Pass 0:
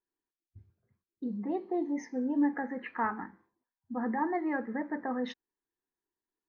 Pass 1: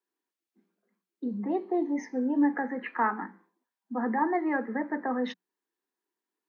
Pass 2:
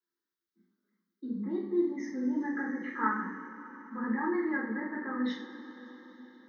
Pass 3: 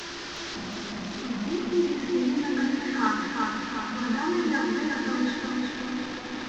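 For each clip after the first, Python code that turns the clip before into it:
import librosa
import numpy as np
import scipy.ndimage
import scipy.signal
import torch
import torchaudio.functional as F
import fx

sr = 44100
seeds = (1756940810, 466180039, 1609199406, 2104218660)

y1 = scipy.signal.sosfilt(scipy.signal.cheby1(10, 1.0, 180.0, 'highpass', fs=sr, output='sos'), x)
y1 = fx.bass_treble(y1, sr, bass_db=-3, treble_db=-3)
y1 = F.gain(torch.from_numpy(y1), 5.0).numpy()
y2 = fx.fixed_phaser(y1, sr, hz=2600.0, stages=6)
y2 = fx.rev_double_slope(y2, sr, seeds[0], early_s=0.44, late_s=5.0, knee_db=-18, drr_db=-5.5)
y2 = F.gain(torch.from_numpy(y2), -6.0).numpy()
y3 = fx.delta_mod(y2, sr, bps=32000, step_db=-34.0)
y3 = fx.echo_feedback(y3, sr, ms=365, feedback_pct=49, wet_db=-3.0)
y3 = F.gain(torch.from_numpy(y3), 3.5).numpy()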